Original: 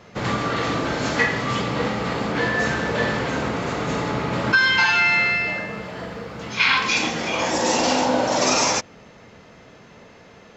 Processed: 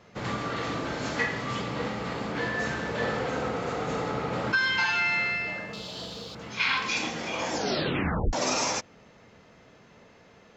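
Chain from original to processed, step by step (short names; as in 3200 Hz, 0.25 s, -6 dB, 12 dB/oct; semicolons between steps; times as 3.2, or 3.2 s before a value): 3.02–4.48 small resonant body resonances 490/750/1300 Hz, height 9 dB; 5.73–6.35 resonant high shelf 2700 Hz +11.5 dB, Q 3; 7.52 tape stop 0.81 s; gain -8 dB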